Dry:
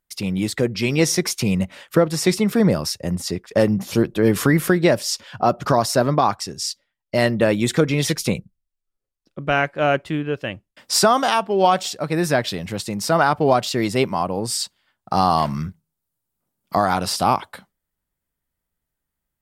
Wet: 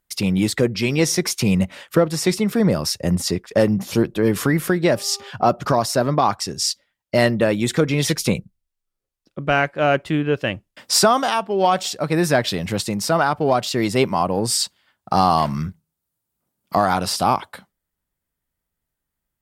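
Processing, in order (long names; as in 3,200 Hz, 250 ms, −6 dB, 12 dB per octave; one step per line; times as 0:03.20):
0:04.86–0:05.29: hum with harmonics 400 Hz, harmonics 3, −45 dBFS
speech leveller within 4 dB 0.5 s
harmonic generator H 5 −33 dB, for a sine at −3 dBFS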